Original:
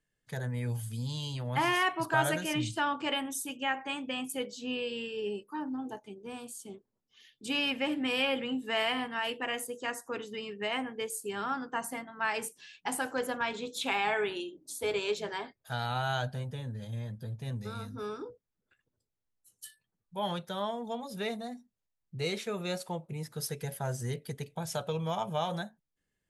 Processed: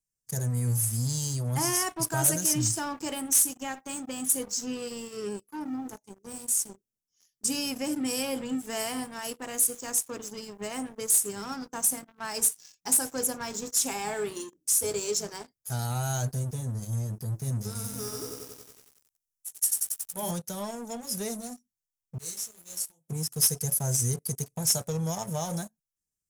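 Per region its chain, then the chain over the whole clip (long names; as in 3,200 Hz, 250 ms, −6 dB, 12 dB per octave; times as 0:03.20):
0:17.75–0:20.31: high-shelf EQ 4,200 Hz +5 dB + mains-hum notches 50/100/150/200/250/300/350/400 Hz + feedback echo at a low word length 92 ms, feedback 80%, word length 10 bits, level −3 dB
0:22.18–0:23.08: first-order pre-emphasis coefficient 0.8 + micro pitch shift up and down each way 34 cents
whole clip: drawn EQ curve 110 Hz 0 dB, 2,400 Hz −16 dB, 3,800 Hz −14 dB, 5,400 Hz +12 dB, 11,000 Hz +13 dB; leveller curve on the samples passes 3; level −4 dB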